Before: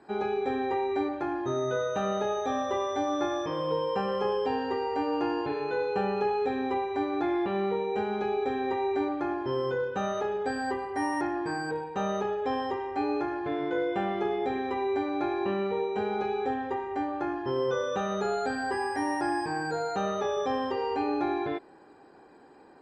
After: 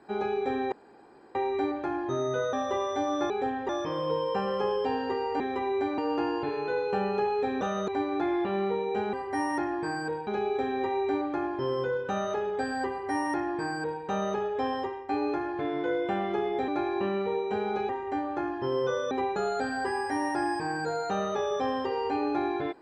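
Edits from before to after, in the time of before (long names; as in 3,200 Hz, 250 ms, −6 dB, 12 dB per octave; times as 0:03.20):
0:00.72: splice in room tone 0.63 s
0:01.90–0:02.53: remove
0:06.64–0:06.89: swap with 0:17.95–0:18.22
0:10.76–0:11.90: duplicate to 0:08.14
0:12.67–0:12.96: fade out, to −10 dB
0:14.55–0:15.13: move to 0:05.01
0:16.34–0:16.73: move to 0:03.30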